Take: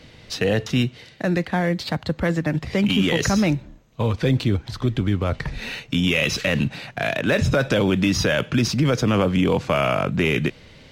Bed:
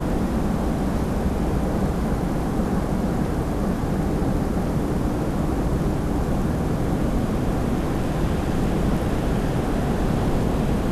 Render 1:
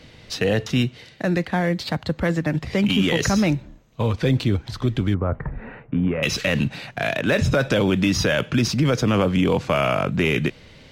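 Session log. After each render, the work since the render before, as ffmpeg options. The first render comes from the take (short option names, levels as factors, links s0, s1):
-filter_complex "[0:a]asettb=1/sr,asplit=3[s0][s1][s2];[s0]atrim=end=5.144[s3];[s1]atrim=start=5.14:end=6.23,asetpts=PTS-STARTPTS,afade=t=in:d=0.004:c=qsin,afade=t=out:st=1.086:d=0.004:c=qsin,lowpass=f=1500:w=0.5412,lowpass=f=1500:w=1.3066[s4];[s2]atrim=start=6.226[s5];[s3][s4]acrossfade=d=0.004:c1=hsin:c2=qsin[s6];[s6][s5]acrossfade=d=0.004:c1=qsin:c2=hsin"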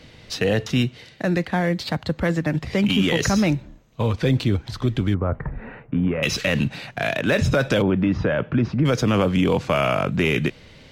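-filter_complex "[0:a]asplit=3[s0][s1][s2];[s0]afade=t=out:st=7.81:d=0.02[s3];[s1]lowpass=1500,afade=t=in:st=7.81:d=0.02,afade=t=out:st=8.84:d=0.02[s4];[s2]afade=t=in:st=8.84:d=0.02[s5];[s3][s4][s5]amix=inputs=3:normalize=0"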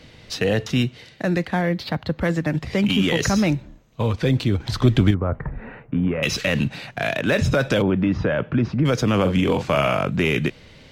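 -filter_complex "[0:a]asettb=1/sr,asplit=3[s0][s1][s2];[s0]atrim=end=1.614[s3];[s1]atrim=start=1.61:end=2.21,asetpts=PTS-STARTPTS,afade=t=in:d=0.004:c=qsin,afade=t=out:st=0.596:d=0.004:c=qsin,equalizer=f=7700:t=o:w=0.87:g=-10.5[s4];[s2]atrim=start=2.206[s5];[s3][s4]acrossfade=d=0.004:c1=hsin:c2=qsin[s6];[s6][s5]acrossfade=d=0.004:c1=qsin:c2=hsin,asettb=1/sr,asplit=3[s7][s8][s9];[s7]atrim=end=4.604[s10];[s8]atrim=start=4.6:end=5.11,asetpts=PTS-STARTPTS,afade=t=in:d=0.004:c=qsin,afade=t=out:st=0.506:d=0.004:c=qsin,acontrast=67[s11];[s9]atrim=start=5.106[s12];[s10][s11]acrossfade=d=0.004:c1=hsin:c2=qsin[s13];[s13][s12]acrossfade=d=0.004:c1=qsin:c2=hsin,asettb=1/sr,asplit=3[s14][s15][s16];[s14]atrim=end=9.214[s17];[s15]atrim=start=9.21:end=9.97,asetpts=PTS-STARTPTS,afade=t=in:d=0.004:c=qsin,afade=t=out:st=0.756:d=0.004:c=qsin,asplit=2[s18][s19];[s19]adelay=42,volume=0.398[s20];[s18][s20]amix=inputs=2:normalize=0,atrim=end_sample=33516[s21];[s16]atrim=start=9.966[s22];[s17][s21]acrossfade=d=0.004:c1=hsin:c2=qsin[s23];[s23][s22]acrossfade=d=0.004:c1=qsin:c2=hsin"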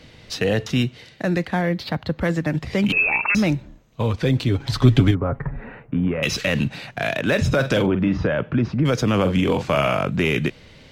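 -filter_complex "[0:a]asettb=1/sr,asplit=3[s0][s1][s2];[s0]atrim=end=2.924[s3];[s1]atrim=start=2.92:end=3.35,asetpts=PTS-STARTPTS,afade=t=in:d=0.004:c=qsin,afade=t=out:st=0.426:d=0.004:c=qsin,lowpass=f=2400:t=q:w=0.5098,lowpass=f=2400:t=q:w=0.6013,lowpass=f=2400:t=q:w=0.9,lowpass=f=2400:t=q:w=2.563,afreqshift=-2800[s4];[s2]atrim=start=3.346[s5];[s3][s4]acrossfade=d=0.004:c1=hsin:c2=qsin[s6];[s6][s5]acrossfade=d=0.004:c1=qsin:c2=hsin,asettb=1/sr,asplit=3[s7][s8][s9];[s7]atrim=end=4.474[s10];[s8]atrim=start=4.47:end=5.64,asetpts=PTS-STARTPTS,afade=t=in:d=0.004:c=qsin,afade=t=out:st=1.166:d=0.004:c=qsin,aecho=1:1:7.2:0.57,atrim=end_sample=51597[s11];[s9]atrim=start=5.636[s12];[s10][s11]acrossfade=d=0.004:c1=hsin:c2=qsin[s13];[s13][s12]acrossfade=d=0.004:c1=qsin:c2=hsin,asettb=1/sr,asplit=3[s14][s15][s16];[s14]atrim=end=7.544[s17];[s15]atrim=start=7.54:end=8.27,asetpts=PTS-STARTPTS,afade=t=in:d=0.004:c=qsin,afade=t=out:st=0.726:d=0.004:c=qsin,asplit=2[s18][s19];[s19]adelay=45,volume=0.335[s20];[s18][s20]amix=inputs=2:normalize=0,atrim=end_sample=32193[s21];[s16]atrim=start=8.266[s22];[s17][s21]acrossfade=d=0.004:c1=hsin:c2=qsin[s23];[s23][s22]acrossfade=d=0.004:c1=qsin:c2=hsin"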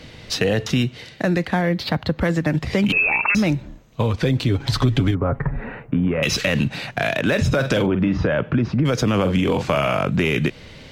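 -filter_complex "[0:a]asplit=2[s0][s1];[s1]alimiter=limit=0.224:level=0:latency=1,volume=0.891[s2];[s0][s2]amix=inputs=2:normalize=0,acompressor=threshold=0.141:ratio=2.5"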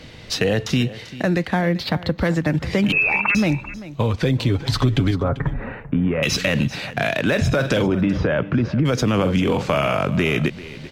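-af "aecho=1:1:391:0.15"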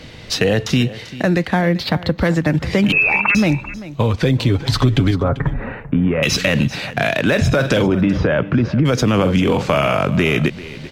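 -af "volume=1.5"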